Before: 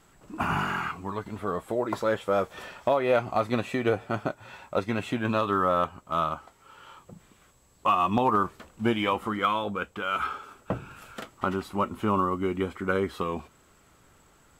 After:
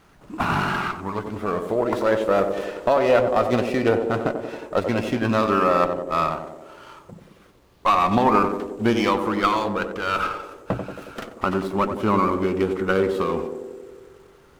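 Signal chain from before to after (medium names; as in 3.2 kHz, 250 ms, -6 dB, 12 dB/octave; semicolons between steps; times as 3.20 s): band-passed feedback delay 91 ms, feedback 76%, band-pass 390 Hz, level -5 dB; sliding maximum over 5 samples; trim +5 dB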